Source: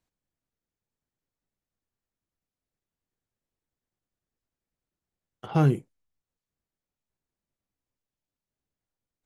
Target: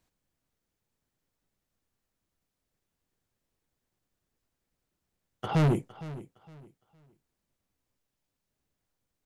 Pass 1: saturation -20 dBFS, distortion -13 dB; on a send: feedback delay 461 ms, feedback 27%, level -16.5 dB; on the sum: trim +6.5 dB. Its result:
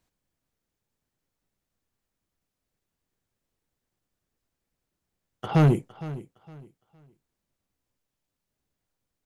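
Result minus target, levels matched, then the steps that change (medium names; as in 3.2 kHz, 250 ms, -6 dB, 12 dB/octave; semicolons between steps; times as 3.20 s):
saturation: distortion -6 dB
change: saturation -27 dBFS, distortion -7 dB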